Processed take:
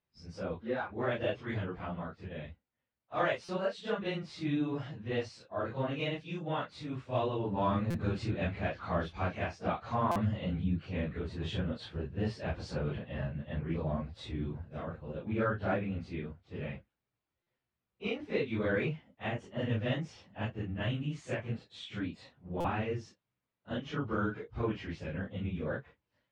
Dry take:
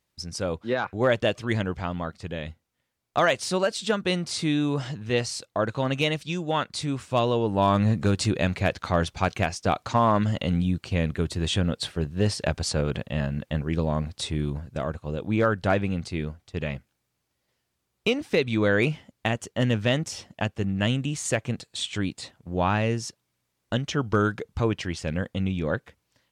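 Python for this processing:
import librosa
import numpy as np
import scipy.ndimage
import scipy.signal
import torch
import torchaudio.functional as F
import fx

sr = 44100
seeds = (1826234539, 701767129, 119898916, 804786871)

y = fx.phase_scramble(x, sr, seeds[0], window_ms=100)
y = scipy.signal.sosfilt(scipy.signal.butter(2, 2900.0, 'lowpass', fs=sr, output='sos'), y)
y = fx.buffer_glitch(y, sr, at_s=(3.44, 7.9, 10.11, 17.42, 22.6), block=256, repeats=7)
y = F.gain(torch.from_numpy(y), -9.0).numpy()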